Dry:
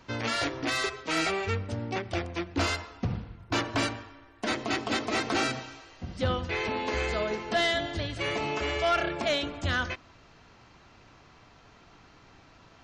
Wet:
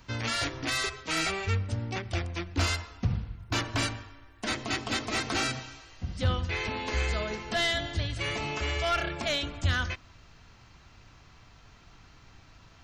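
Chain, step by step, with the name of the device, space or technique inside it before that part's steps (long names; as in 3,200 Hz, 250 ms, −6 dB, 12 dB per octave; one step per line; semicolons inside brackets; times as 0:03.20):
smiley-face EQ (low-shelf EQ 130 Hz +8.5 dB; parametric band 420 Hz −6 dB 2.7 octaves; high-shelf EQ 8,400 Hz +8 dB)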